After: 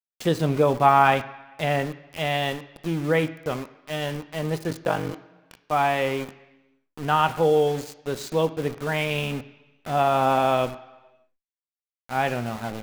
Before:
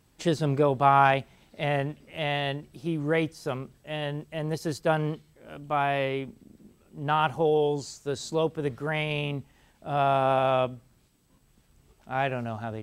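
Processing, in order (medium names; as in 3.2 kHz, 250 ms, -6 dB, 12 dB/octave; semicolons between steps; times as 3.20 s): 4.69–5.64 s: ring modulator 24 Hz; small samples zeroed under -36 dBFS; on a send at -8.5 dB: reverberation RT60 1.2 s, pre-delay 3 ms; on the sum: endings held to a fixed fall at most 390 dB/s; trim +3 dB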